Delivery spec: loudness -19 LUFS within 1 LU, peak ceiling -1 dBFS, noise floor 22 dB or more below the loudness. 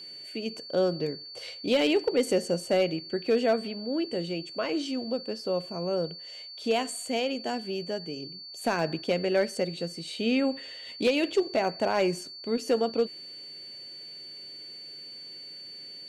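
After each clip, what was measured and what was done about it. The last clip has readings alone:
clipped 0.3%; flat tops at -16.5 dBFS; steady tone 4500 Hz; tone level -41 dBFS; loudness -29.0 LUFS; peak -16.5 dBFS; loudness target -19.0 LUFS
-> clip repair -16.5 dBFS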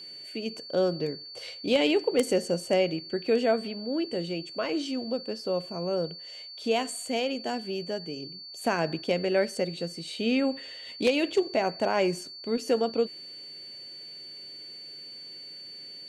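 clipped 0.0%; steady tone 4500 Hz; tone level -41 dBFS
-> notch 4500 Hz, Q 30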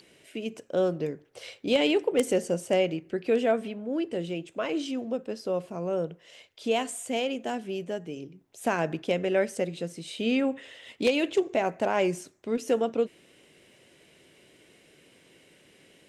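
steady tone none; loudness -29.0 LUFS; peak -7.5 dBFS; loudness target -19.0 LUFS
-> gain +10 dB; limiter -1 dBFS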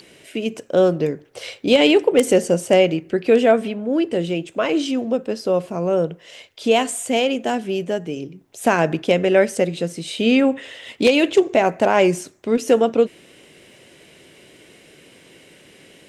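loudness -19.0 LUFS; peak -1.0 dBFS; noise floor -50 dBFS

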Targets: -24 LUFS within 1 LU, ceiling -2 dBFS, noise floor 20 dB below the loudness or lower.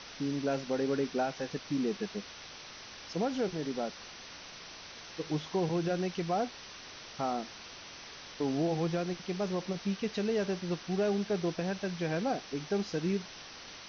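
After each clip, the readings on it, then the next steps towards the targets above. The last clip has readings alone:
noise floor -48 dBFS; noise floor target -54 dBFS; loudness -34.0 LUFS; peak -20.5 dBFS; loudness target -24.0 LUFS
-> noise print and reduce 6 dB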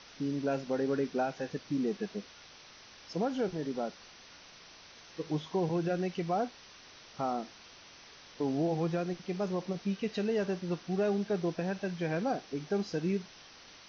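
noise floor -54 dBFS; loudness -34.0 LUFS; peak -21.0 dBFS; loudness target -24.0 LUFS
-> gain +10 dB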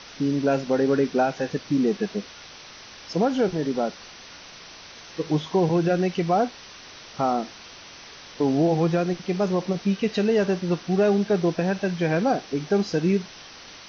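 loudness -24.0 LUFS; peak -11.0 dBFS; noise floor -44 dBFS

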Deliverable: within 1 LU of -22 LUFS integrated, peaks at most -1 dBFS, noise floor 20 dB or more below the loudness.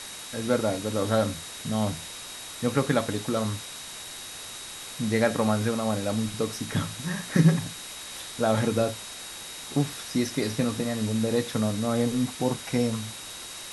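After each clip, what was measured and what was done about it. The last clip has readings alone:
steady tone 3800 Hz; tone level -44 dBFS; noise floor -40 dBFS; noise floor target -48 dBFS; loudness -28.0 LUFS; peak -8.0 dBFS; loudness target -22.0 LUFS
-> notch 3800 Hz, Q 30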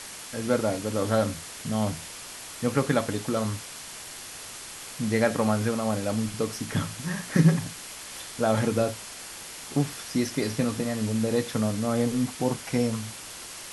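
steady tone none; noise floor -41 dBFS; noise floor target -48 dBFS
-> denoiser 7 dB, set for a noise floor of -41 dBFS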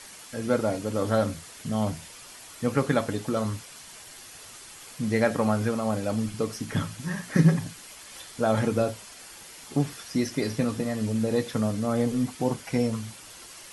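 noise floor -46 dBFS; noise floor target -48 dBFS
-> denoiser 6 dB, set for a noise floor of -46 dBFS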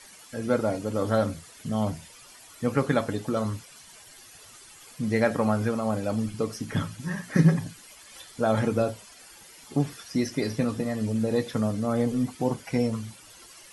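noise floor -50 dBFS; loudness -27.5 LUFS; peak -8.5 dBFS; loudness target -22.0 LUFS
-> gain +5.5 dB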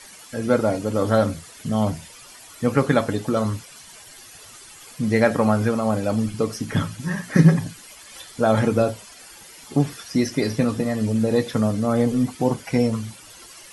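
loudness -22.0 LUFS; peak -3.0 dBFS; noise floor -45 dBFS

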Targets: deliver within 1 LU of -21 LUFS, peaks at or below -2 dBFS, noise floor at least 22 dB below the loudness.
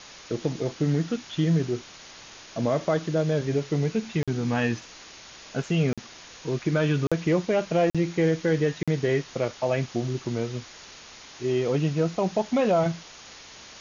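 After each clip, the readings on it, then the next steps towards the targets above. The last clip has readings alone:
dropouts 5; longest dropout 46 ms; noise floor -46 dBFS; noise floor target -48 dBFS; loudness -26.0 LUFS; peak -12.0 dBFS; loudness target -21.0 LUFS
-> interpolate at 4.23/5.93/7.07/7.9/8.83, 46 ms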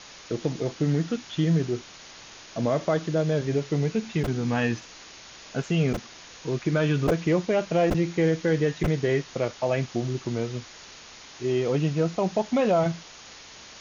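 dropouts 0; noise floor -46 dBFS; noise floor target -48 dBFS
-> denoiser 6 dB, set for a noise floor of -46 dBFS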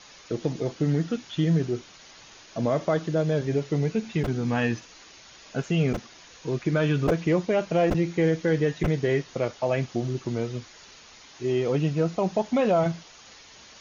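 noise floor -50 dBFS; loudness -26.0 LUFS; peak -11.0 dBFS; loudness target -21.0 LUFS
-> gain +5 dB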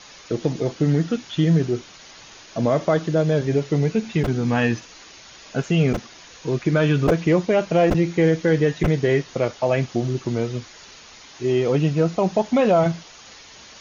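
loudness -21.0 LUFS; peak -6.0 dBFS; noise floor -45 dBFS

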